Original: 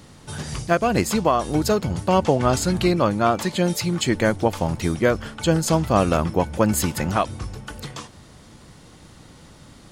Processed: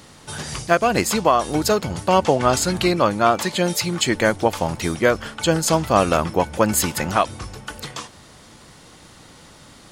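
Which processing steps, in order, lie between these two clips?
low-shelf EQ 340 Hz −8.5 dB
level +4.5 dB

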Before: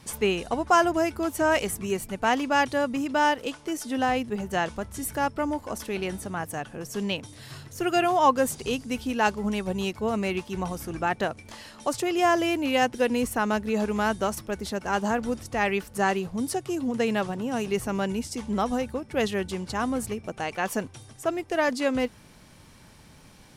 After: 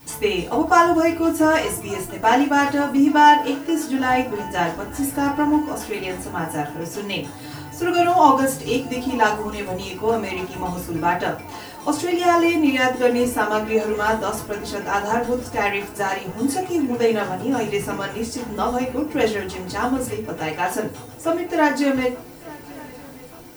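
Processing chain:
background noise violet −54 dBFS
on a send: feedback echo with a long and a short gap by turns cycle 1,178 ms, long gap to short 3 to 1, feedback 69%, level −22.5 dB
on the sum: feedback delay network reverb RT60 0.35 s, low-frequency decay 1×, high-frequency decay 0.7×, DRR −7 dB
level −2.5 dB

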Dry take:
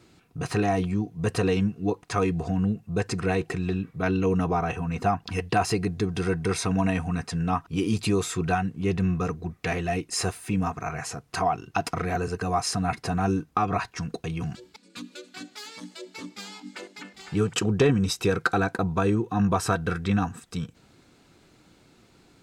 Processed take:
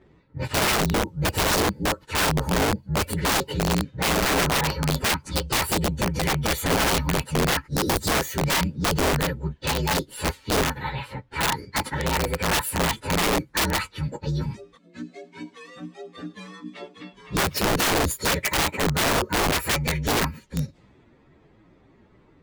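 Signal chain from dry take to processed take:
partials spread apart or drawn together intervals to 122%
low-pass that shuts in the quiet parts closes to 2,000 Hz, open at −26 dBFS
wrap-around overflow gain 22.5 dB
level +6 dB

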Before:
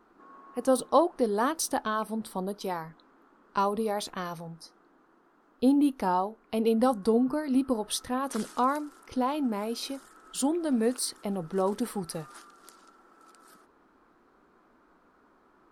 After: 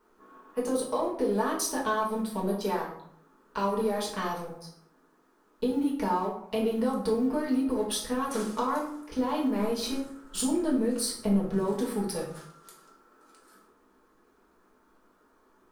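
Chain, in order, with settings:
mu-law and A-law mismatch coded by A
0:09.61–0:11.62: low-shelf EQ 190 Hz +12 dB
brickwall limiter −20 dBFS, peak gain reduction 9 dB
downward compressor, threshold −31 dBFS, peak gain reduction 8.5 dB
convolution reverb RT60 0.65 s, pre-delay 4 ms, DRR −4 dB

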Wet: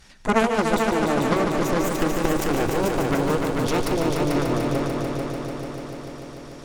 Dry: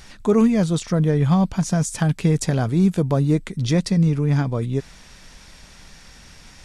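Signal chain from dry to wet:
harmonic generator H 3 −8 dB, 5 −34 dB, 7 −29 dB, 8 −19 dB, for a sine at −6 dBFS
echo machine with several playback heads 147 ms, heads all three, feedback 72%, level −8 dB
level +2 dB

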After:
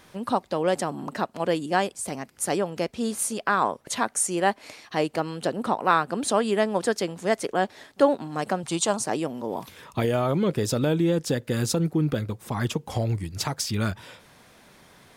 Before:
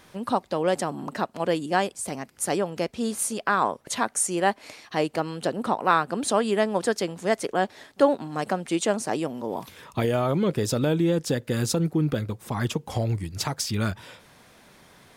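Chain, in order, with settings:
0:08.63–0:09.04: octave-band graphic EQ 125/250/500/1,000/2,000/4,000/8,000 Hz +10/−6/−4/+8/−7/+5/+5 dB

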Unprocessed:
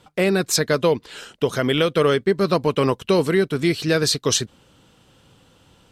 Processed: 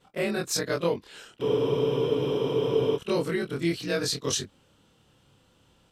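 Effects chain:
every overlapping window played backwards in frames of 59 ms
frozen spectrum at 0:01.44, 1.53 s
level −5 dB

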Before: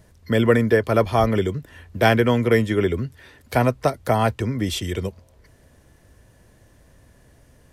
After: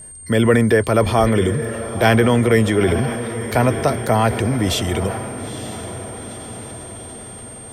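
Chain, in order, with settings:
in parallel at −3 dB: brickwall limiter −14 dBFS, peak gain reduction 10.5 dB
on the sum: feedback delay with all-pass diffusion 910 ms, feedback 59%, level −12 dB
transient designer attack −1 dB, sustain +5 dB
steady tone 8,700 Hz −36 dBFS

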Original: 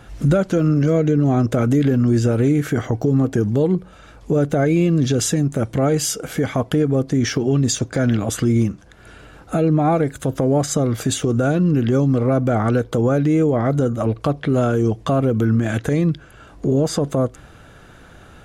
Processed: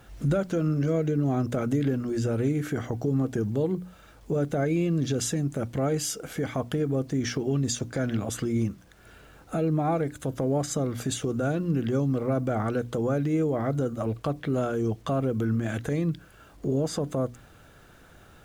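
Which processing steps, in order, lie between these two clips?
mains-hum notches 60/120/180/240/300 Hz
bit reduction 9 bits
level −8.5 dB

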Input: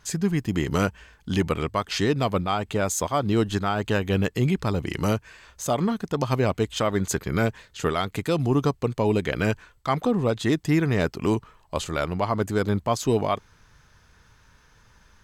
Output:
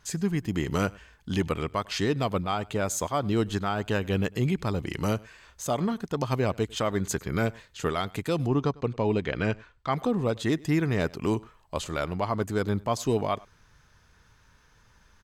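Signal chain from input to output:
0:08.47–0:09.93: low-pass filter 4,700 Hz 12 dB per octave
slap from a distant wall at 17 metres, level −24 dB
level −3.5 dB

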